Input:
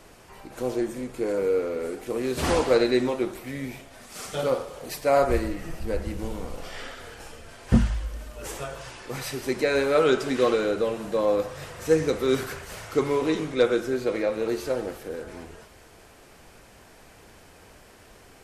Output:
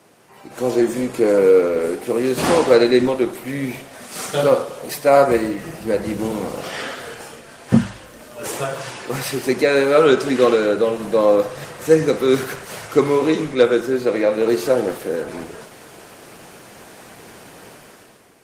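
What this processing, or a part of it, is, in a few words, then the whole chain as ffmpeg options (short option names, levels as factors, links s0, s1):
video call: -af "highpass=f=120:w=0.5412,highpass=f=120:w=1.3066,dynaudnorm=f=140:g=9:m=4.22" -ar 48000 -c:a libopus -b:a 24k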